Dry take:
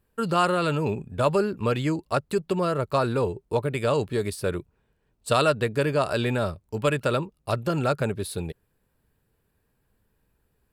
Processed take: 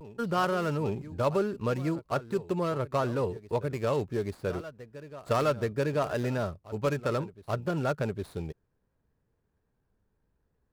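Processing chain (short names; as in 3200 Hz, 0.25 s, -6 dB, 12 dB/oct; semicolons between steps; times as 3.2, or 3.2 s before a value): median filter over 15 samples; reverse echo 0.822 s -16 dB; vibrato 0.68 Hz 49 cents; gain -4.5 dB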